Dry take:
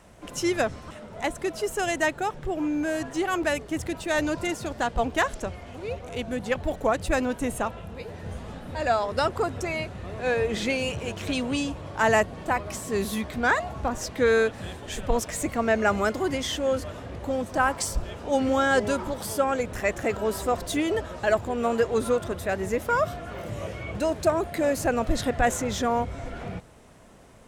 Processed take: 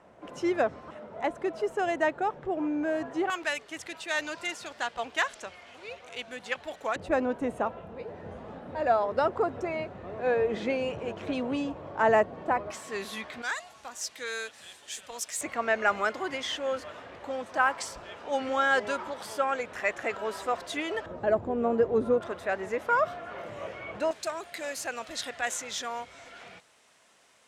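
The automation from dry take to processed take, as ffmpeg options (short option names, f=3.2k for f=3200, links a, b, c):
-af "asetnsamples=n=441:p=0,asendcmd='3.3 bandpass f 2900;6.96 bandpass f 590;12.71 bandpass f 1900;13.42 bandpass f 6900;15.41 bandpass f 1700;21.06 bandpass f 330;22.21 bandpass f 1200;24.11 bandpass f 4200',bandpass=f=660:t=q:w=0.58:csg=0"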